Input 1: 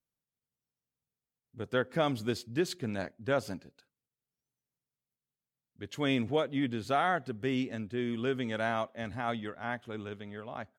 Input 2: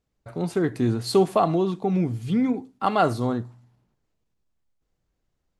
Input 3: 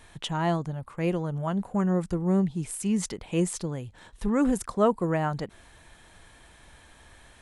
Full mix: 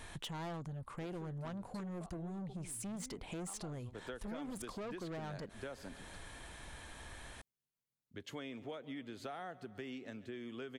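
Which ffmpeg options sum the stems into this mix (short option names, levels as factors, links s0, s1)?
-filter_complex "[0:a]acrossover=split=230|830|3400[s0][s1][s2][s3];[s0]acompressor=threshold=0.00398:ratio=4[s4];[s1]acompressor=threshold=0.0251:ratio=4[s5];[s2]acompressor=threshold=0.0141:ratio=4[s6];[s3]acompressor=threshold=0.00355:ratio=4[s7];[s4][s5][s6][s7]amix=inputs=4:normalize=0,adelay=2350,volume=0.75,asplit=2[s8][s9];[s9]volume=0.0794[s10];[1:a]acompressor=threshold=0.0562:ratio=6,adelay=650,volume=0.133[s11];[2:a]alimiter=limit=0.112:level=0:latency=1:release=272,asoftclip=type=tanh:threshold=0.0237,volume=1.33,asplit=2[s12][s13];[s13]apad=whole_len=275462[s14];[s11][s14]sidechaingate=range=0.0224:threshold=0.0112:ratio=16:detection=peak[s15];[s10]aecho=0:1:141|282|423|564|705|846|987|1128|1269:1|0.57|0.325|0.185|0.106|0.0602|0.0343|0.0195|0.0111[s16];[s8][s15][s12][s16]amix=inputs=4:normalize=0,acompressor=threshold=0.00631:ratio=4"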